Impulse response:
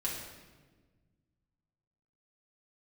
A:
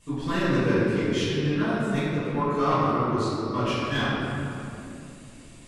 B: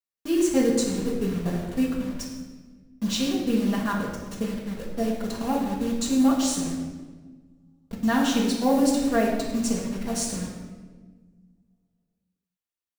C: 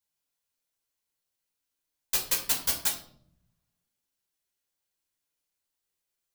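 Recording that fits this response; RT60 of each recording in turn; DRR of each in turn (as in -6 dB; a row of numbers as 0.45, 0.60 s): B; 2.8, 1.4, 0.60 s; -14.5, -5.5, -2.0 dB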